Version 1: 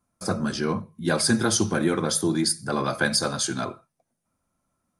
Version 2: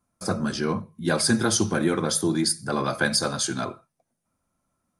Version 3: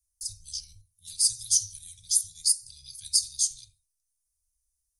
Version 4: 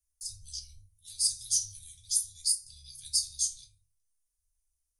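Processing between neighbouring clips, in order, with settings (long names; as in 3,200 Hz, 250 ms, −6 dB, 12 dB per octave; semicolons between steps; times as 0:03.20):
no processing that can be heard
inverse Chebyshev band-stop filter 220–1,400 Hz, stop band 70 dB; level +3.5 dB
convolution reverb RT60 0.25 s, pre-delay 3 ms, DRR 2 dB; level −6 dB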